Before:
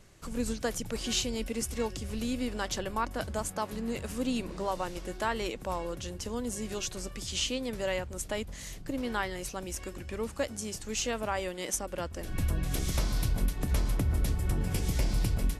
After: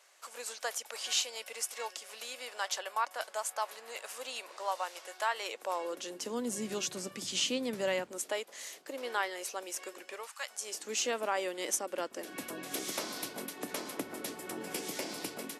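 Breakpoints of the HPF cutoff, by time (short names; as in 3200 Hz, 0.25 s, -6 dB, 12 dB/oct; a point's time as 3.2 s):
HPF 24 dB/oct
5.34 s 620 Hz
6.61 s 170 Hz
7.91 s 170 Hz
8.41 s 410 Hz
10.1 s 410 Hz
10.36 s 1100 Hz
10.86 s 280 Hz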